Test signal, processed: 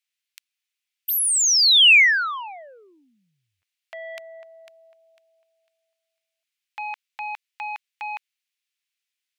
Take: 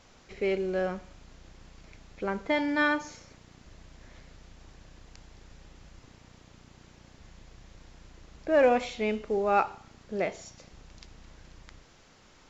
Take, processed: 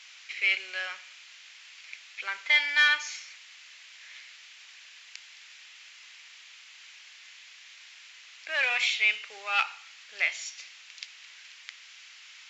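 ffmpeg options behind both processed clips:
-filter_complex "[0:a]acontrast=31,asplit=2[a][b];[b]highpass=f=720:p=1,volume=9dB,asoftclip=type=tanh:threshold=-7.5dB[c];[a][c]amix=inputs=2:normalize=0,lowpass=f=6.1k:p=1,volume=-6dB,highpass=f=2.4k:t=q:w=1.9"

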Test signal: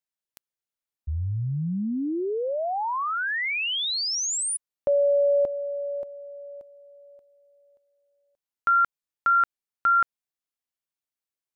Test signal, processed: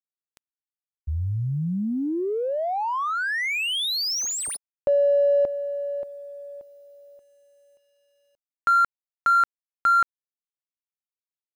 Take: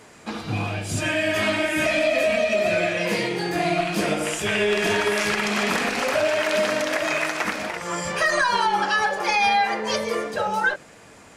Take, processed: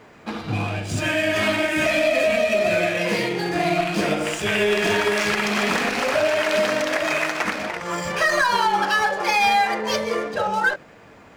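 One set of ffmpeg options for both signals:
-af "adynamicsmooth=sensitivity=8:basefreq=3.2k,acrusher=bits=11:mix=0:aa=0.000001,volume=1.5dB"

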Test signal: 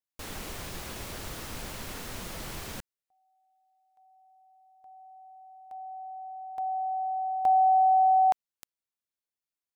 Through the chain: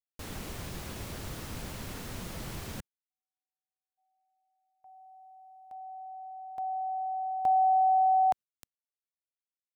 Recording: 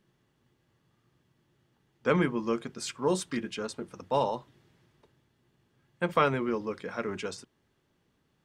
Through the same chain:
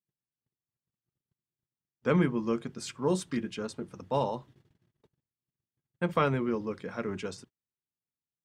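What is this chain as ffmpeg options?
-af "equalizer=f=120:w=0.43:g=7,agate=range=-33dB:threshold=-55dB:ratio=3:release=53:detection=rms,volume=-3.5dB"

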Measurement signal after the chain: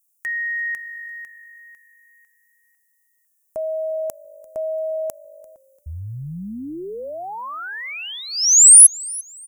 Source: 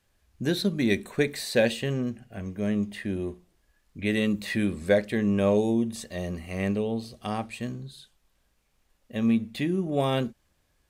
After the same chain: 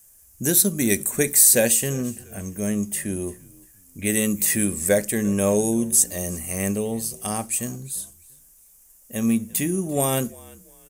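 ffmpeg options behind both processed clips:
-filter_complex "[0:a]aexciter=amount=11.7:drive=7.9:freq=6.1k,asplit=3[a][b][c];[b]adelay=343,afreqshift=-50,volume=-22.5dB[d];[c]adelay=686,afreqshift=-100,volume=-32.4dB[e];[a][d][e]amix=inputs=3:normalize=0,volume=2dB"

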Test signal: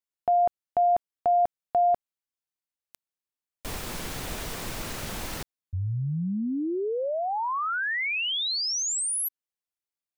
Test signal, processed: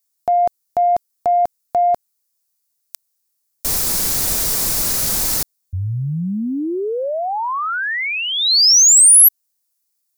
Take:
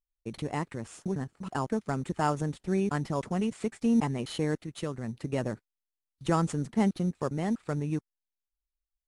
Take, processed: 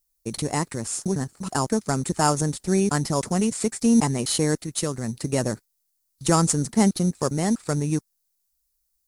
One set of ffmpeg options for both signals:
-af "aexciter=amount=4.7:drive=4.5:freq=4.3k,acontrast=73"

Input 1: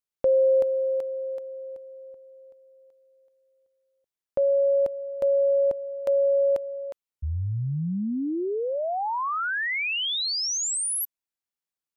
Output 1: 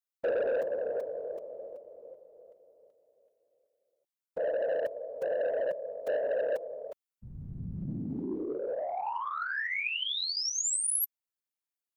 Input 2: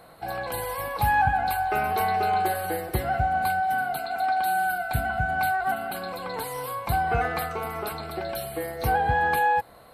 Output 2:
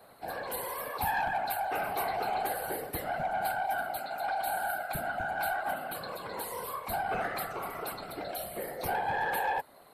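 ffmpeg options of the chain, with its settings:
-filter_complex "[0:a]highpass=150,afftfilt=real='hypot(re,im)*cos(2*PI*random(0))':imag='hypot(re,im)*sin(2*PI*random(1))':win_size=512:overlap=0.75,highshelf=f=8.8k:g=5.5,acrossover=split=2200[a][b];[a]asoftclip=type=tanh:threshold=-25dB[c];[c][b]amix=inputs=2:normalize=0"

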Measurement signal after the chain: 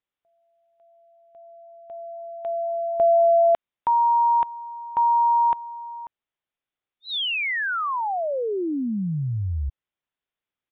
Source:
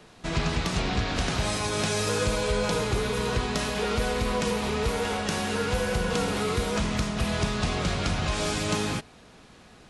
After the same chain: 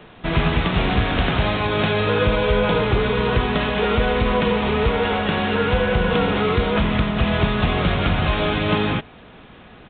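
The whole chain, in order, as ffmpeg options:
-af "aresample=8000,aresample=44100,volume=8dB"

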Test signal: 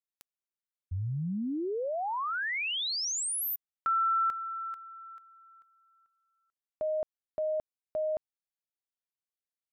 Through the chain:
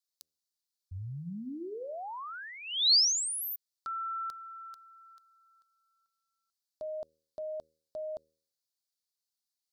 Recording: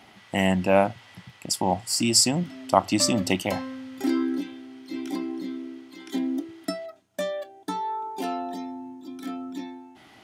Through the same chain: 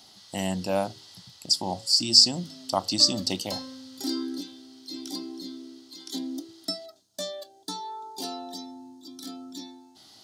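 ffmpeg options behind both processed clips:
-filter_complex "[0:a]acrossover=split=5000[a][b];[b]acompressor=threshold=-42dB:ratio=4:attack=1:release=60[c];[a][c]amix=inputs=2:normalize=0,highshelf=f=3.2k:t=q:w=3:g=11.5,bandreject=f=78.95:t=h:w=4,bandreject=f=157.9:t=h:w=4,bandreject=f=236.85:t=h:w=4,bandreject=f=315.8:t=h:w=4,bandreject=f=394.75:t=h:w=4,bandreject=f=473.7:t=h:w=4,bandreject=f=552.65:t=h:w=4,volume=-6.5dB"

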